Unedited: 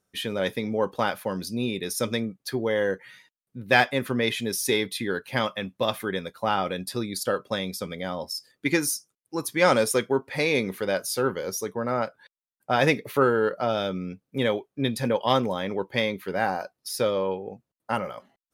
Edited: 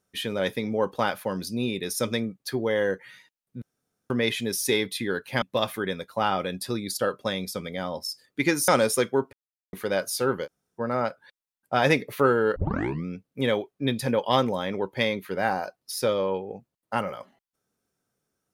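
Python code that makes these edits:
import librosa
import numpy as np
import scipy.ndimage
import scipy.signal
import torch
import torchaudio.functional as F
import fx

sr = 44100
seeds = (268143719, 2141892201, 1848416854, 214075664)

y = fx.edit(x, sr, fx.room_tone_fill(start_s=3.62, length_s=0.48),
    fx.cut(start_s=5.42, length_s=0.26),
    fx.cut(start_s=8.94, length_s=0.71),
    fx.silence(start_s=10.3, length_s=0.4),
    fx.room_tone_fill(start_s=11.43, length_s=0.33, crossfade_s=0.04),
    fx.tape_start(start_s=13.53, length_s=0.49), tone=tone)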